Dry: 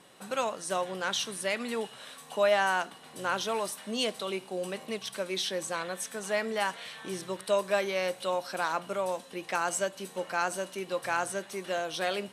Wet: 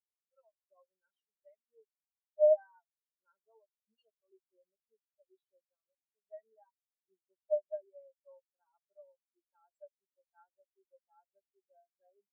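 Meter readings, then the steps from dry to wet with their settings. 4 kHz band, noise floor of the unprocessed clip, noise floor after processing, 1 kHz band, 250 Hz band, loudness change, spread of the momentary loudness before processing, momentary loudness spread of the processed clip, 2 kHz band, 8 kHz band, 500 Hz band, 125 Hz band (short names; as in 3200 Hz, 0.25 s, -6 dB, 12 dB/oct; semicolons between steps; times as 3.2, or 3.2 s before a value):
under -40 dB, -51 dBFS, under -85 dBFS, under -30 dB, under -40 dB, +0.5 dB, 8 LU, 18 LU, under -40 dB, under -40 dB, -6.0 dB, under -40 dB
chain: companded quantiser 4-bit; notch comb 250 Hz; spectral expander 4:1; gain -4.5 dB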